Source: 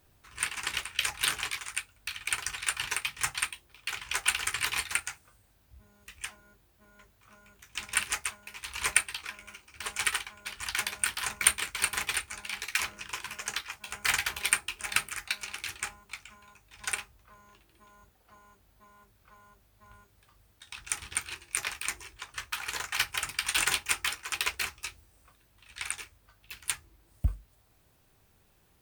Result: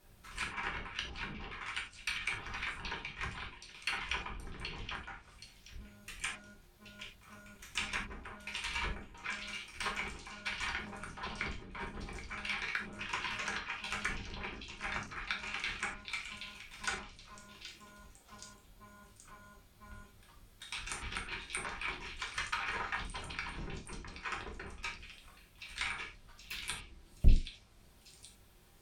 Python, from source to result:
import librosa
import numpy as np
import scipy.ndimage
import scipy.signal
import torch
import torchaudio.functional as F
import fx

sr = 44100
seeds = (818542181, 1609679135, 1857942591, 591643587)

y = fx.octave_divider(x, sr, octaves=1, level_db=0.0)
y = fx.env_lowpass_down(y, sr, base_hz=330.0, full_db=-27.0)
y = fx.echo_stepped(y, sr, ms=775, hz=3700.0, octaves=0.7, feedback_pct=70, wet_db=-4.5)
y = fx.rev_gated(y, sr, seeds[0], gate_ms=120, shape='falling', drr_db=-1.0)
y = y * 10.0 ** (-1.0 / 20.0)